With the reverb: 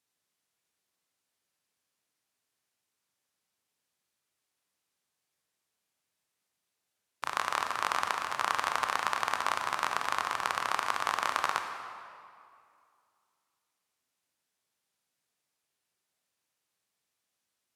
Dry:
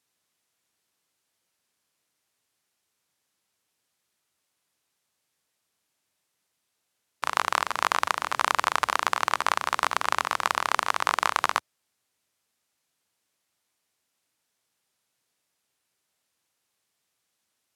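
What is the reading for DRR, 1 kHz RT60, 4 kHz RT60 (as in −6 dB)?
4.5 dB, 2.4 s, 1.7 s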